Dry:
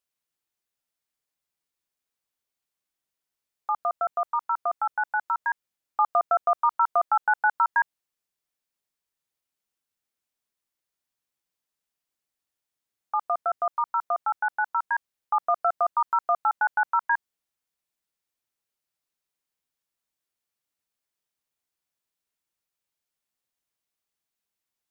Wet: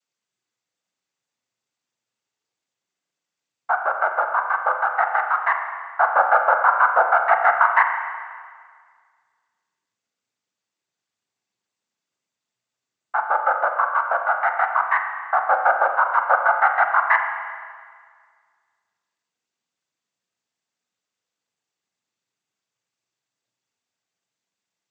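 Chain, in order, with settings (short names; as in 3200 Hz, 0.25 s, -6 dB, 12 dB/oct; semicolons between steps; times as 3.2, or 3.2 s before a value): noise vocoder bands 16; wow and flutter 23 cents; spring tank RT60 1.8 s, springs 33/41 ms, chirp 80 ms, DRR 4 dB; gain +5.5 dB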